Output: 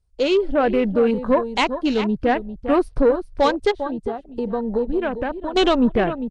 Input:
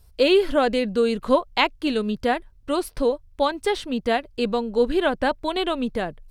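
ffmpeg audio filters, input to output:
-filter_complex "[0:a]asplit=3[s0][s1][s2];[s0]afade=t=out:st=3.7:d=0.02[s3];[s1]acompressor=threshold=0.02:ratio=6,afade=t=in:st=3.7:d=0.02,afade=t=out:st=5.55:d=0.02[s4];[s2]afade=t=in:st=5.55:d=0.02[s5];[s3][s4][s5]amix=inputs=3:normalize=0,bandreject=f=7600:w=8.5,dynaudnorm=f=230:g=5:m=6.68,asplit=2[s6][s7];[s7]aecho=0:1:400:0.266[s8];[s6][s8]amix=inputs=2:normalize=0,afwtdn=0.0398,asoftclip=type=tanh:threshold=0.447,lowshelf=f=310:g=3.5,volume=0.75" -ar 22050 -c:a nellymoser

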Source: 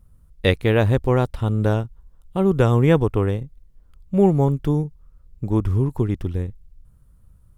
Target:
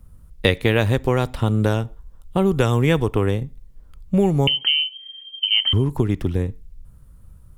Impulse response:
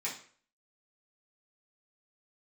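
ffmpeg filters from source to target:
-filter_complex "[0:a]asettb=1/sr,asplit=3[s0][s1][s2];[s0]atrim=end=4.474[s3];[s1]atrim=start=4.47:end=5.73,asetpts=PTS-STARTPTS,afade=t=in:d=0.004:c=qsin,afade=t=out:st=1.256:d=0.004:c=qsin,lowpass=f=2700:t=q:w=0.5098,lowpass=f=2700:t=q:w=0.6013,lowpass=f=2700:t=q:w=0.9,lowpass=f=2700:t=q:w=2.563,afreqshift=-3200[s4];[s2]atrim=start=5.726[s5];[s3][s4]acrossfade=d=0.004:c1=hsin:c2=qsin[s6];[s6][s5]acrossfade=d=0.004:c1=qsin:c2=hsin,asplit=2[s7][s8];[1:a]atrim=start_sample=2205,afade=t=out:st=0.21:d=0.01,atrim=end_sample=9702[s9];[s8][s9]afir=irnorm=-1:irlink=0,volume=0.0841[s10];[s7][s10]amix=inputs=2:normalize=0,acrossover=split=100|1900[s11][s12][s13];[s11]acompressor=threshold=0.0178:ratio=4[s14];[s12]acompressor=threshold=0.0708:ratio=4[s15];[s13]acompressor=threshold=0.0501:ratio=4[s16];[s14][s15][s16]amix=inputs=3:normalize=0,volume=2.11"

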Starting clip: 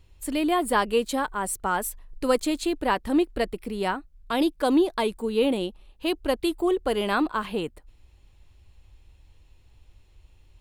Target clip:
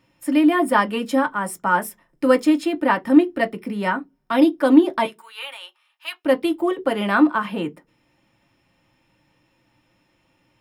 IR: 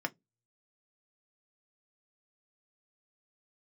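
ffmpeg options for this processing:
-filter_complex "[0:a]asettb=1/sr,asplit=3[s0][s1][s2];[s0]atrim=end=5.054[s3];[s1]atrim=start=5.05:end=6.25,asetpts=PTS-STARTPTS,afade=t=in:d=0.004:c=qsin,afade=t=out:st=1.196:d=0.004:c=qsin,highpass=f=1100:w=0.5412,highpass=f=1100:w=1.3066[s4];[s2]atrim=start=6.246[s5];[s3][s4]acrossfade=d=0.004:c1=hsin:c2=qsin[s6];[s6][s5]acrossfade=d=0.004:c1=qsin:c2=hsin[s7];[1:a]atrim=start_sample=2205[s8];[s7][s8]afir=irnorm=-1:irlink=0,volume=1.19"

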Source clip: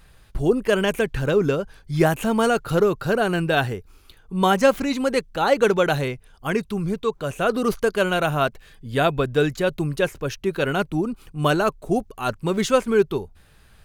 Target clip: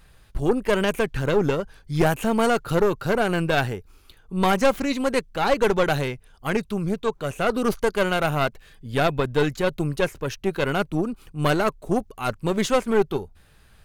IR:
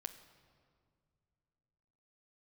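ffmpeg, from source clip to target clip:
-af "aeval=exprs='(tanh(5.01*val(0)+0.65)-tanh(0.65))/5.01':c=same,volume=1.26"

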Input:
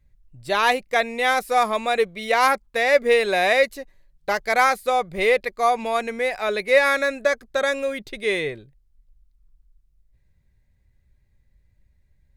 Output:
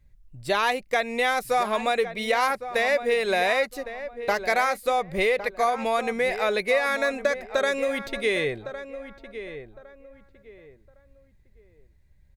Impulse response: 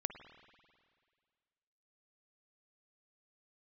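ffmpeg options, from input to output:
-filter_complex "[0:a]acompressor=threshold=0.0794:ratio=5,asplit=2[s0][s1];[s1]adelay=1109,lowpass=f=1800:p=1,volume=0.282,asplit=2[s2][s3];[s3]adelay=1109,lowpass=f=1800:p=1,volume=0.28,asplit=2[s4][s5];[s5]adelay=1109,lowpass=f=1800:p=1,volume=0.28[s6];[s0][s2][s4][s6]amix=inputs=4:normalize=0,volume=1.26"

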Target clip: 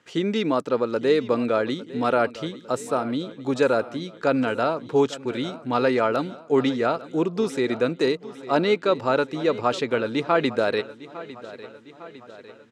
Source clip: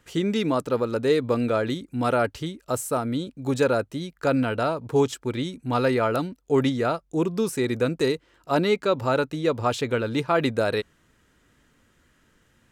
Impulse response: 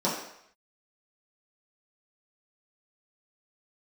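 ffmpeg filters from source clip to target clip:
-filter_complex "[0:a]highpass=190,lowpass=5700,asplit=2[s0][s1];[s1]aecho=0:1:854|1708|2562|3416|4270:0.141|0.0805|0.0459|0.0262|0.0149[s2];[s0][s2]amix=inputs=2:normalize=0,volume=1.19"

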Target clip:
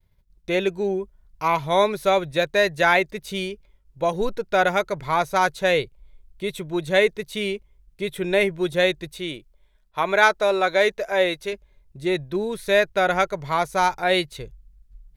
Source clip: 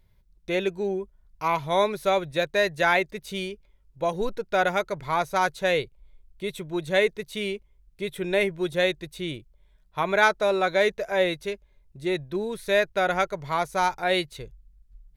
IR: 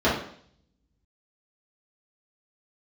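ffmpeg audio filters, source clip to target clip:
-filter_complex "[0:a]agate=range=0.0224:threshold=0.00178:ratio=3:detection=peak,asettb=1/sr,asplit=3[s0][s1][s2];[s0]atrim=end=9.164[s3];[s1]atrim=start=9.16:end=11.53,asetpts=PTS-STARTPTS,afade=t=in:d=0.004:c=qsin,afade=t=out:st=2.366:d=0.004:c=qsin,equalizer=f=88:w=0.63:g=-11[s4];[s2]atrim=start=11.526[s5];[s3][s4]acrossfade=d=0.004:c1=hsin:c2=qsin[s6];[s6][s5]acrossfade=d=0.004:c1=qsin:c2=hsin,volume=1.5"

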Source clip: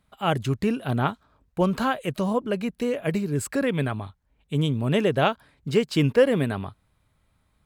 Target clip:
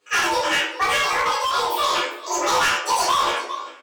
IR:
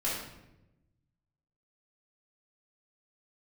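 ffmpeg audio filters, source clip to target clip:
-filter_complex "[0:a]aecho=1:1:51|183|801:0.562|0.126|0.119,afreqshift=38,aeval=exprs='val(0)+0.00224*(sin(2*PI*50*n/s)+sin(2*PI*2*50*n/s)/2+sin(2*PI*3*50*n/s)/3+sin(2*PI*4*50*n/s)/4+sin(2*PI*5*50*n/s)/5)':c=same,highpass=510,lowpass=6300[s0];[1:a]atrim=start_sample=2205,asetrate=37485,aresample=44100[s1];[s0][s1]afir=irnorm=-1:irlink=0,asetrate=88200,aresample=44100,asplit=2[s2][s3];[s3]alimiter=limit=0.282:level=0:latency=1:release=72,volume=1.12[s4];[s2][s4]amix=inputs=2:normalize=0,flanger=delay=16.5:depth=2.4:speed=0.88,asoftclip=type=hard:threshold=0.168,asplit=2[s5][s6];[s6]adelay=12,volume=0.531[s7];[s5][s7]amix=inputs=2:normalize=0,volume=0.794"

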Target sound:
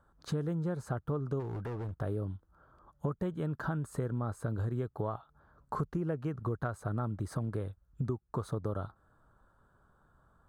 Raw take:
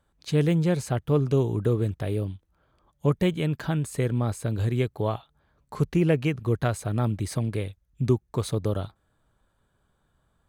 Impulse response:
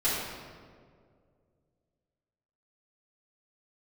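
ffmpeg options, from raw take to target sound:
-filter_complex "[0:a]highshelf=f=1800:t=q:w=3:g=-9,acompressor=threshold=0.02:ratio=6,asplit=3[s0][s1][s2];[s0]afade=t=out:st=1.39:d=0.02[s3];[s1]asoftclip=type=hard:threshold=0.0141,afade=t=in:st=1.39:d=0.02,afade=t=out:st=1.98:d=0.02[s4];[s2]afade=t=in:st=1.98:d=0.02[s5];[s3][s4][s5]amix=inputs=3:normalize=0,volume=1.26"

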